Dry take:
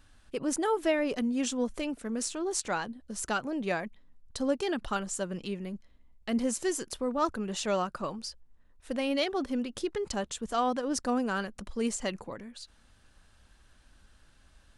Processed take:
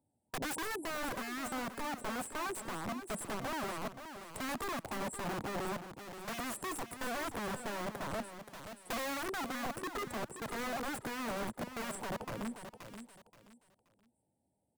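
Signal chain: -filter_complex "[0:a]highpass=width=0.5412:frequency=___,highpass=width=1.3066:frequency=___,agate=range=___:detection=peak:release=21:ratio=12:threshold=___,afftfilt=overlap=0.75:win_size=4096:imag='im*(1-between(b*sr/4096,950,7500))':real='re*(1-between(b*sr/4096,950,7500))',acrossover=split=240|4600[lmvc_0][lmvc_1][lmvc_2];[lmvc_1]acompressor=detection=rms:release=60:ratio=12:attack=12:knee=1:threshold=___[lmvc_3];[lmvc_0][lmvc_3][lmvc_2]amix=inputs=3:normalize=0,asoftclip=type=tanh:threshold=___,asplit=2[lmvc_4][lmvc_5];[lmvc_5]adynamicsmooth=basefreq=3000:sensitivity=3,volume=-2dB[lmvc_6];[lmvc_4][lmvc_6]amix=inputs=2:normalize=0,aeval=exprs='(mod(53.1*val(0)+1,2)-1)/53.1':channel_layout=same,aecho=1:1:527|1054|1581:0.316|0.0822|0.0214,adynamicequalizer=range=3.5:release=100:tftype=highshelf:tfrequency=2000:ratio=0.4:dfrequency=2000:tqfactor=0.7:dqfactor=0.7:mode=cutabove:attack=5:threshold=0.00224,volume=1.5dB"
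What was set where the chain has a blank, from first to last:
110, 110, -18dB, -60dB, -45dB, -33.5dB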